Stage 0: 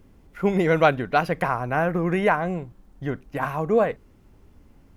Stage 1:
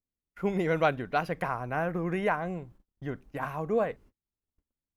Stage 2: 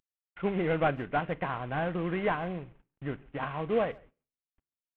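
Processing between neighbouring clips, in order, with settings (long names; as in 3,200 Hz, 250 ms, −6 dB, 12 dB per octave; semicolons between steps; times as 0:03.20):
noise gate −45 dBFS, range −35 dB; level −7.5 dB
variable-slope delta modulation 16 kbit/s; far-end echo of a speakerphone 140 ms, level −25 dB; on a send at −18 dB: convolution reverb RT60 0.40 s, pre-delay 3 ms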